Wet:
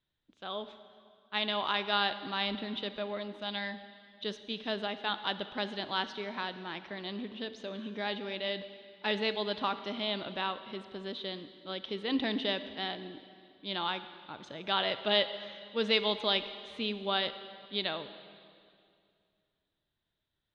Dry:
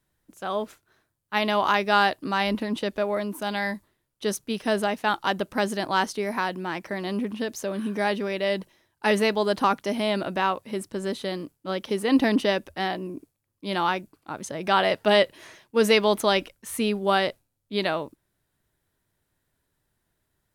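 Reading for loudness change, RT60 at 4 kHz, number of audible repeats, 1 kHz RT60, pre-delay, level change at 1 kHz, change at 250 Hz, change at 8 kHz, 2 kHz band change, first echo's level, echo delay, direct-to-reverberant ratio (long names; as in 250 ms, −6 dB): −8.5 dB, 2.2 s, no echo audible, 2.3 s, 34 ms, −10.5 dB, −11.0 dB, below −25 dB, −8.5 dB, no echo audible, no echo audible, 11.5 dB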